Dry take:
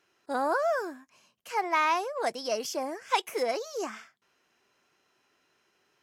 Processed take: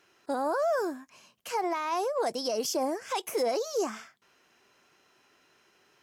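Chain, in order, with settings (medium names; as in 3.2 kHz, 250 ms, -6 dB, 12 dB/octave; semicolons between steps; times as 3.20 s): peak limiter -25 dBFS, peak gain reduction 11.5 dB; dynamic bell 2.1 kHz, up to -8 dB, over -50 dBFS, Q 0.79; trim +6 dB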